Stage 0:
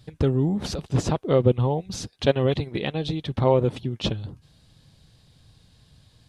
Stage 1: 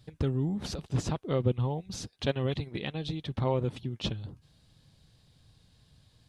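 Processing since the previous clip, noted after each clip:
dynamic equaliser 530 Hz, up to −5 dB, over −33 dBFS, Q 0.8
level −6 dB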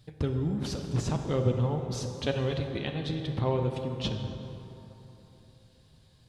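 dense smooth reverb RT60 3.4 s, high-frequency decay 0.5×, DRR 4 dB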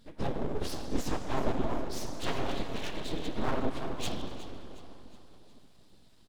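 random phases in long frames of 50 ms
full-wave rectification
repeating echo 364 ms, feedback 47%, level −15.5 dB

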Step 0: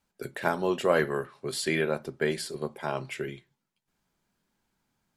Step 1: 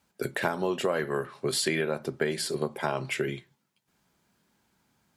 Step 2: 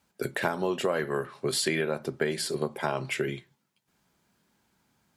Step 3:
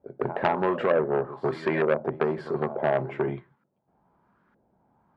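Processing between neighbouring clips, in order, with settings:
high-pass filter 60 Hz; downward compressor 8 to 1, threshold −31 dBFS, peak gain reduction 13.5 dB; level +7 dB
no processing that can be heard
auto-filter low-pass saw up 1.1 Hz 540–1,500 Hz; backwards echo 154 ms −16 dB; saturating transformer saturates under 1,300 Hz; level +3.5 dB

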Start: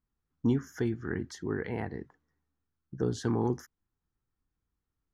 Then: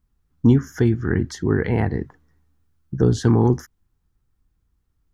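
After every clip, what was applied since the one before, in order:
low-shelf EQ 140 Hz +11 dB
in parallel at +2.5 dB: speech leveller 2 s
on the sum: level +2 dB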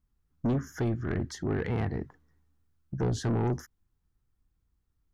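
soft clipping −17 dBFS, distortion −9 dB
level −6.5 dB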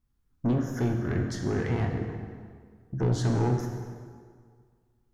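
dense smooth reverb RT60 1.9 s, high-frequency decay 0.75×, DRR 2 dB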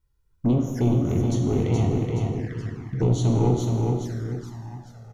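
repeating echo 423 ms, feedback 48%, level −4 dB
flanger swept by the level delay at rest 2.1 ms, full sweep at −26.5 dBFS
level +5 dB

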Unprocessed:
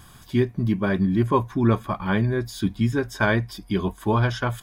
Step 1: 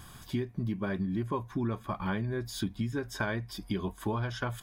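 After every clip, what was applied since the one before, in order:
downward compressor 6 to 1, threshold −28 dBFS, peak gain reduction 13 dB
level −1.5 dB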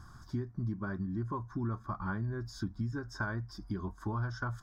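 drawn EQ curve 110 Hz 0 dB, 180 Hz −5 dB, 330 Hz −4 dB, 470 Hz −12 dB, 840 Hz −6 dB, 1,400 Hz +1 dB, 2,700 Hz −27 dB, 5,400 Hz −3 dB, 9,900 Hz −20 dB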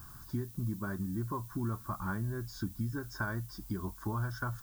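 background noise violet −54 dBFS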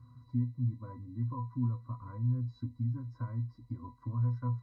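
resonances in every octave B, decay 0.17 s
level +7.5 dB

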